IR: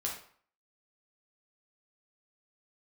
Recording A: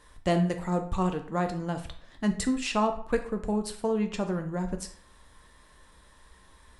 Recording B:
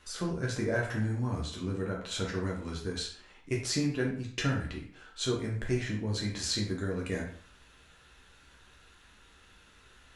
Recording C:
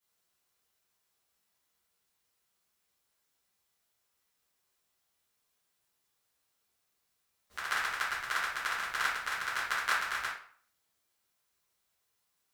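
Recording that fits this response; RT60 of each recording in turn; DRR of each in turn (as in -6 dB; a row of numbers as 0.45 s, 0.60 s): B; 0.50 s, 0.50 s, 0.50 s; 5.5 dB, -2.5 dB, -12.0 dB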